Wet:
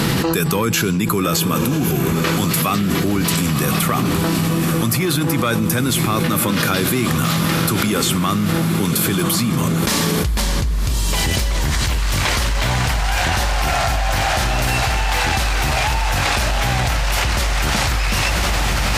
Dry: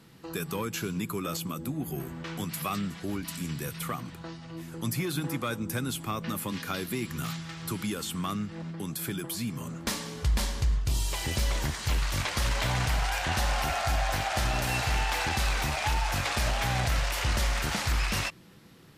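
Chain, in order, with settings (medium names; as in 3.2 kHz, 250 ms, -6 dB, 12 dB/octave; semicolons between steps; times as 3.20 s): on a send: echo that smears into a reverb 1067 ms, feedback 52%, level -8.5 dB; on the sum: level flattener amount 100%; trim +4 dB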